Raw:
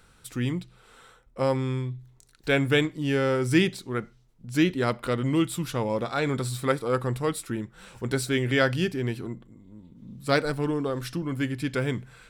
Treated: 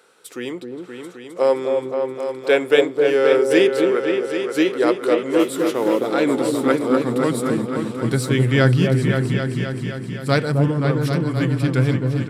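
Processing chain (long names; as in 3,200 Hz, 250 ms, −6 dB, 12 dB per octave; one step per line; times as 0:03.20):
0:05.39–0:06.12: noise that follows the level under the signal 22 dB
high-pass filter sweep 430 Hz → 130 Hz, 0:05.30–0:08.21
echo whose low-pass opens from repeat to repeat 262 ms, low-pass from 750 Hz, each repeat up 2 octaves, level −3 dB
downsampling to 32,000 Hz
level +3 dB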